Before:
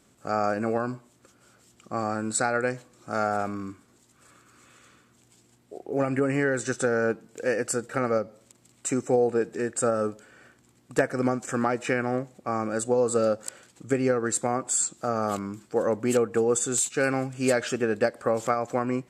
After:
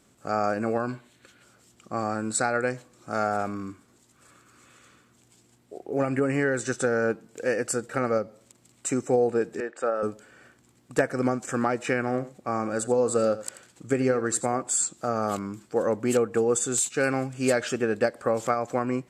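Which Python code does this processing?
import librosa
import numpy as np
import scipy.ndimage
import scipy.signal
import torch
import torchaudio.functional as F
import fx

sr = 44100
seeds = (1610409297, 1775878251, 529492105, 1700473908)

y = fx.spec_box(x, sr, start_s=0.89, length_s=0.54, low_hz=1400.0, high_hz=4500.0, gain_db=9)
y = fx.bandpass_edges(y, sr, low_hz=430.0, high_hz=3000.0, at=(9.6, 10.03))
y = fx.echo_single(y, sr, ms=85, db=-15.0, at=(11.99, 14.62))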